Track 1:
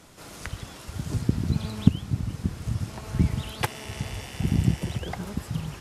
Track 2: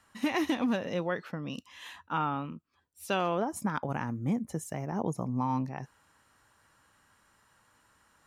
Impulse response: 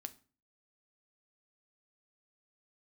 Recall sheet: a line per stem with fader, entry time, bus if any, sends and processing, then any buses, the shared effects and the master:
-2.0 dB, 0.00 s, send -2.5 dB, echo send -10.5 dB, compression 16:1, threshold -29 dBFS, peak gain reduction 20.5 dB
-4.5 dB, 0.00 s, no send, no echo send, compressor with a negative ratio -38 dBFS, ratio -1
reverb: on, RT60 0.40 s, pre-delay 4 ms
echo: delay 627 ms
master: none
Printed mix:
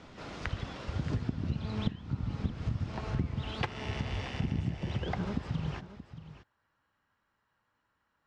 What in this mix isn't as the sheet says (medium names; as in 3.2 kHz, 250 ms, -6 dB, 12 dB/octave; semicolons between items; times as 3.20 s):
stem 2 -4.5 dB -> -16.5 dB; master: extra Bessel low-pass 3.5 kHz, order 4